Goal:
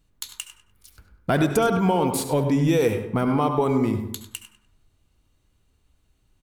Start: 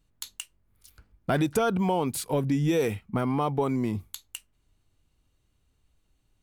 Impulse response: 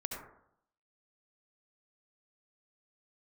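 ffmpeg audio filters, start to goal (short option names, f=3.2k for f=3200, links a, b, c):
-filter_complex "[0:a]asplit=2[a][b];[b]adelay=99,lowpass=f=4.9k:p=1,volume=-10.5dB,asplit=2[c][d];[d]adelay=99,lowpass=f=4.9k:p=1,volume=0.3,asplit=2[e][f];[f]adelay=99,lowpass=f=4.9k:p=1,volume=0.3[g];[a][c][e][g]amix=inputs=4:normalize=0,asplit=2[h][i];[1:a]atrim=start_sample=2205[j];[i][j]afir=irnorm=-1:irlink=0,volume=-2.5dB[k];[h][k]amix=inputs=2:normalize=0"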